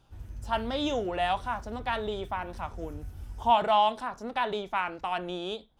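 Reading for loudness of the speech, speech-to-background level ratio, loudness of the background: −30.0 LKFS, 15.5 dB, −45.5 LKFS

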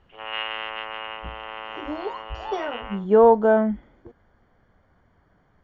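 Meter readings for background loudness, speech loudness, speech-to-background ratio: −33.5 LKFS, −21.0 LKFS, 12.5 dB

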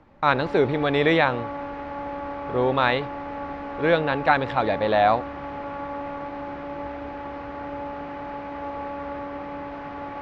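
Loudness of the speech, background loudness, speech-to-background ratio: −22.5 LKFS, −33.5 LKFS, 11.0 dB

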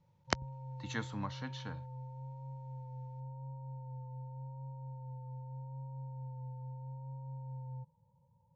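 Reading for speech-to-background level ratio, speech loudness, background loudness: 5.0 dB, −41.0 LKFS, −46.0 LKFS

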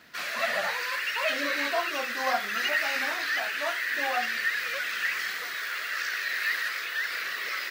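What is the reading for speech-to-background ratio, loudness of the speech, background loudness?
−5.5 dB, −34.0 LKFS, −28.5 LKFS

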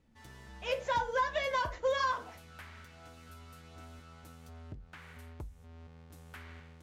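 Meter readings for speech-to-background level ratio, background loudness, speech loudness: 19.0 dB, −51.5 LKFS, −32.5 LKFS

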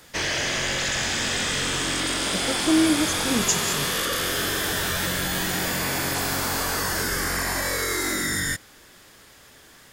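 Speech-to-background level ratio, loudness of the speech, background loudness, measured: −1.0 dB, −25.0 LKFS, −24.0 LKFS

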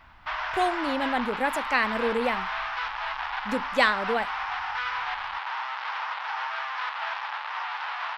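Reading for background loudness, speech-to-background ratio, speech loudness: −31.0 LKFS, 3.5 dB, −27.5 LKFS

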